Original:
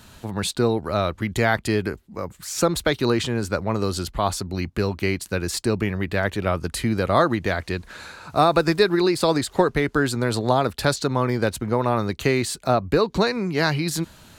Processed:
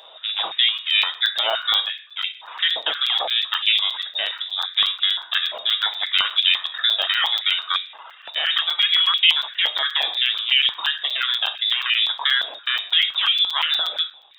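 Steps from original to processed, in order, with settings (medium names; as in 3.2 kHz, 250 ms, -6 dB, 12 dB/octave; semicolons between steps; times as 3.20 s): comb filter that takes the minimum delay 0.34 ms; reverb removal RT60 1.1 s; peak limiter -15 dBFS, peak gain reduction 9.5 dB; frequency inversion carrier 3.7 kHz; on a send at -6.5 dB: reverberation RT60 0.65 s, pre-delay 6 ms; on the sum: crackling interface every 0.12 s, samples 256, zero, from 0.78 s; step-sequenced high-pass 5.8 Hz 640–2500 Hz; trim +2 dB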